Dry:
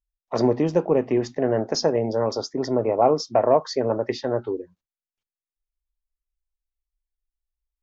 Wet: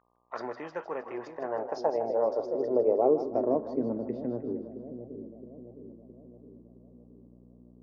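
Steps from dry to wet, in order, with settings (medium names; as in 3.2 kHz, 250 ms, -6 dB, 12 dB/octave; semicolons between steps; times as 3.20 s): mains buzz 60 Hz, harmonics 20, -48 dBFS -7 dB/octave; two-band feedback delay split 590 Hz, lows 666 ms, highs 157 ms, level -9 dB; band-pass sweep 1.5 kHz -> 230 Hz, 0.83–3.98 s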